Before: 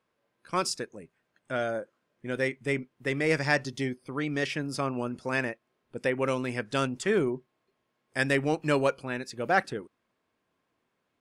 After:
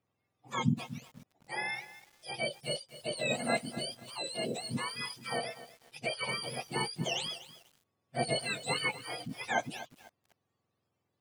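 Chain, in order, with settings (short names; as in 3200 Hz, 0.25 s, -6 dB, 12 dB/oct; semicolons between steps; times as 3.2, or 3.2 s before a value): spectrum mirrored in octaves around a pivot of 1100 Hz; lo-fi delay 0.246 s, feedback 35%, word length 7-bit, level -14 dB; gain -4 dB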